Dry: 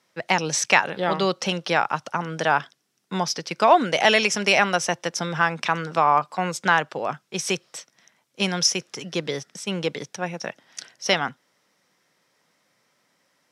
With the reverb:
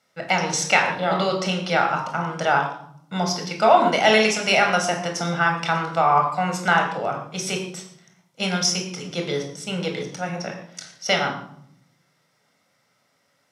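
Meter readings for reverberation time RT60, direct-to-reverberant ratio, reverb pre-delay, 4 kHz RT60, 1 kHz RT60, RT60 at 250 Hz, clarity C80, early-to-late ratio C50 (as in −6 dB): 0.65 s, 2.0 dB, 22 ms, 0.50 s, 0.60 s, 1.1 s, 9.0 dB, 6.0 dB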